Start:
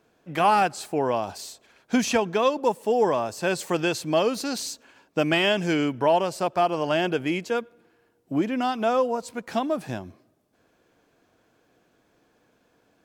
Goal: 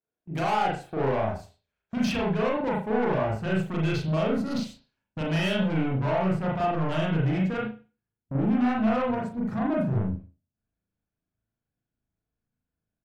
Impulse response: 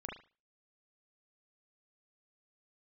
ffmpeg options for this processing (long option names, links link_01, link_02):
-filter_complex "[0:a]afwtdn=0.0178,agate=range=-16dB:threshold=-49dB:ratio=16:detection=peak,asubboost=boost=10:cutoff=130,alimiter=limit=-15.5dB:level=0:latency=1:release=108,asoftclip=type=tanh:threshold=-28dB,asplit=2[link_01][link_02];[link_02]adelay=37,volume=-10.5dB[link_03];[link_01][link_03]amix=inputs=2:normalize=0[link_04];[1:a]atrim=start_sample=2205[link_05];[link_04][link_05]afir=irnorm=-1:irlink=0,adynamicequalizer=threshold=0.00224:dfrequency=3700:dqfactor=0.7:tfrequency=3700:tqfactor=0.7:attack=5:release=100:ratio=0.375:range=2:mode=cutabove:tftype=highshelf,volume=5.5dB"